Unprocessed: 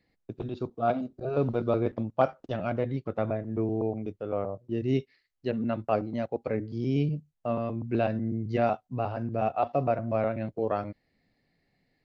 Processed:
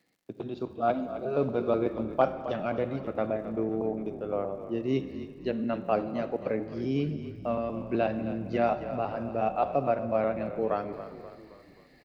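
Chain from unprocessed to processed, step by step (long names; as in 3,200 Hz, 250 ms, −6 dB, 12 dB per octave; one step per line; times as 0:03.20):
high-pass filter 180 Hz 12 dB per octave
reversed playback
upward compression, threshold −49 dBFS
reversed playback
surface crackle 100 per second −59 dBFS
echo with shifted repeats 265 ms, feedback 51%, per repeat −39 Hz, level −12.5 dB
convolution reverb RT60 1.9 s, pre-delay 32 ms, DRR 12 dB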